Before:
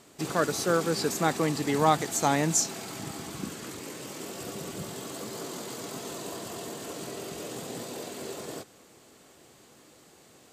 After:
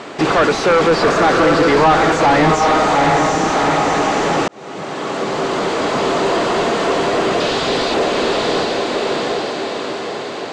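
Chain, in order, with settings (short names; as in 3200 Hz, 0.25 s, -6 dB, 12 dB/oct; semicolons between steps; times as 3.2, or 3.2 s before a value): 7.4–7.94 bell 4200 Hz +12 dB 1.3 oct; diffused feedback echo 0.763 s, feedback 48%, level -4 dB; 4.48–6.28 fade in; overdrive pedal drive 32 dB, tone 1700 Hz, clips at -9 dBFS; air absorption 110 m; gain +6 dB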